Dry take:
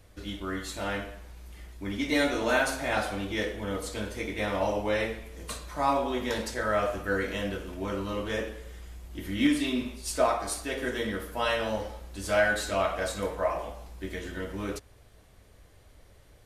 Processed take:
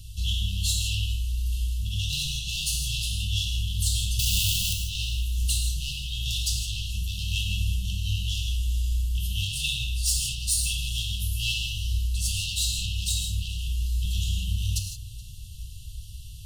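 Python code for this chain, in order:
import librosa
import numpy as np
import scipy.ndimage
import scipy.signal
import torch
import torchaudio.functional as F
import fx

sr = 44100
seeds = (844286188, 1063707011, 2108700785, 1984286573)

p1 = fx.clip_1bit(x, sr, at=(4.19, 4.73))
p2 = fx.rider(p1, sr, range_db=4, speed_s=0.5)
p3 = p1 + (p2 * 10.0 ** (2.0 / 20.0))
p4 = 10.0 ** (-23.5 / 20.0) * np.tanh(p3 / 10.0 ** (-23.5 / 20.0))
p5 = fx.brickwall_bandstop(p4, sr, low_hz=170.0, high_hz=2600.0)
p6 = p5 + fx.echo_feedback(p5, sr, ms=424, feedback_pct=60, wet_db=-23.5, dry=0)
p7 = fx.rev_gated(p6, sr, seeds[0], gate_ms=190, shape='flat', drr_db=2.5)
y = p7 * 10.0 ** (5.0 / 20.0)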